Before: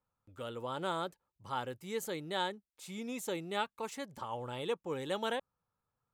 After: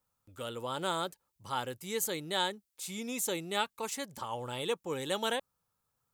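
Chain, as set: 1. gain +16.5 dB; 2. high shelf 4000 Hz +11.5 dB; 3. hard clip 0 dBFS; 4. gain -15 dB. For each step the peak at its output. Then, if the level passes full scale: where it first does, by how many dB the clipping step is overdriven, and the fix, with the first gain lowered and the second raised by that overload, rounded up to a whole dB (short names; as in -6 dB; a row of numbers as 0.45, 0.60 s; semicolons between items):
-3.5, -1.5, -1.5, -16.5 dBFS; no overload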